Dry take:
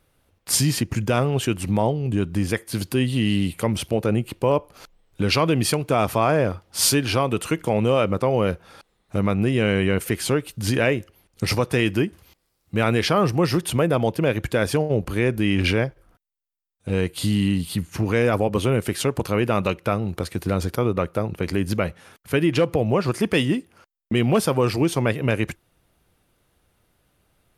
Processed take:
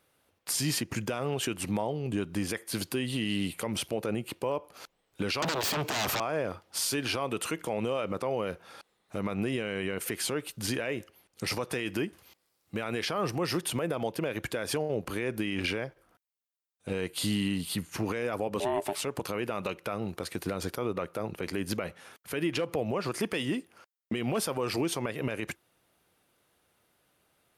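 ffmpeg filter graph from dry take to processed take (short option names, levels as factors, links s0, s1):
-filter_complex "[0:a]asettb=1/sr,asplit=3[s0][s1][s2];[s0]atrim=end=5.424[s3];[s1]atrim=start=5.42:end=6.2,asetpts=PTS-STARTPTS,afade=t=in:d=0.004:c=qsin,afade=t=out:st=0.776:d=0.004:c=qsin,aeval=exprs='0.473*sin(PI/2*7.08*val(0)/0.473)':c=same,equalizer=f=9900:w=4.4:g=-14.5,acrossover=split=260|1100|4400[s4][s5][s6][s7];[s4]acompressor=threshold=0.0501:ratio=3[s8];[s5]acompressor=threshold=0.0398:ratio=3[s9];[s6]acompressor=threshold=0.0316:ratio=3[s10];[s7]acompressor=threshold=0.0355:ratio=3[s11];[s8][s9][s10][s11]amix=inputs=4:normalize=0[s12];[s2]atrim=start=6.196[s13];[s3][s12]acrossfade=d=0.004:c1=hsin:c2=qsin[s14];[s14][s13]acrossfade=d=0.004:c1=qsin:c2=hsin,asettb=1/sr,asplit=3[s15][s16][s17];[s15]atrim=end=18.604[s18];[s16]atrim=start=18.6:end=19.02,asetpts=PTS-STARTPTS,afade=t=in:d=0.004:c=qsin,afade=t=out:st=0.416:d=0.004:c=qsin,lowshelf=f=150:g=11.5,aeval=exprs='val(0)*sin(2*PI*500*n/s)':c=same[s19];[s17]atrim=start=19.016[s20];[s18][s19]acrossfade=d=0.004:c1=hsin:c2=qsin[s21];[s21][s20]acrossfade=d=0.004:c1=qsin:c2=hsin,highpass=f=330:p=1,alimiter=limit=0.119:level=0:latency=1:release=85,volume=0.794"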